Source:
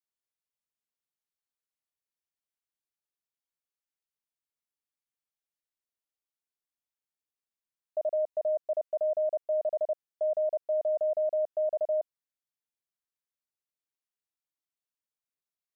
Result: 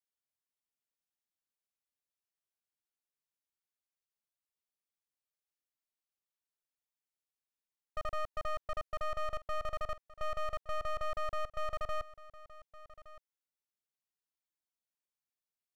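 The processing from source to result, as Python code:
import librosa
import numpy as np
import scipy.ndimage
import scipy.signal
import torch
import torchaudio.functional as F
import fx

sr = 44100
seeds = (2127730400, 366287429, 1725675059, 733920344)

y = np.minimum(x, 2.0 * 10.0 ** (-36.5 / 20.0) - x)
y = y + 10.0 ** (-17.5 / 20.0) * np.pad(y, (int(1167 * sr / 1000.0), 0))[:len(y)]
y = y * librosa.db_to_amplitude(-4.0)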